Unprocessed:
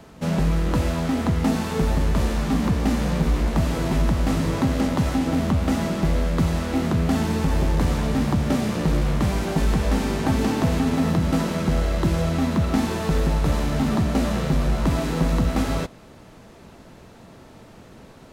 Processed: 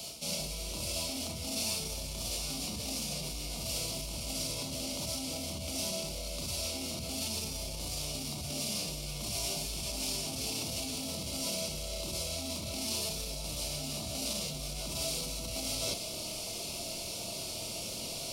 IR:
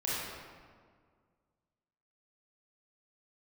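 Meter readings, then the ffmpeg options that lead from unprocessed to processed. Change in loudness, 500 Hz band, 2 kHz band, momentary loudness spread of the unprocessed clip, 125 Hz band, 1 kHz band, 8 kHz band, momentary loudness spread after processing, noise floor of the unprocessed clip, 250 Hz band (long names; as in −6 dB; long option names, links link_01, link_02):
−12.5 dB, −14.0 dB, −12.5 dB, 2 LU, −20.5 dB, −18.0 dB, +4.0 dB, 4 LU, −46 dBFS, −21.0 dB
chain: -filter_complex "[1:a]atrim=start_sample=2205,atrim=end_sample=3528[link_01];[0:a][link_01]afir=irnorm=-1:irlink=0,alimiter=limit=-13.5dB:level=0:latency=1:release=22,areverse,acompressor=threshold=-36dB:ratio=8,areverse,superequalizer=8b=2.24:11b=0.251:14b=1.58:16b=1.58,acrossover=split=110[link_02][link_03];[link_03]aexciter=amount=14.4:drive=1.9:freq=2400[link_04];[link_02][link_04]amix=inputs=2:normalize=0,adynamicequalizer=threshold=0.00447:dfrequency=1600:dqfactor=0.7:tfrequency=1600:tqfactor=0.7:attack=5:release=100:ratio=0.375:range=1.5:mode=cutabove:tftype=highshelf,volume=-4dB"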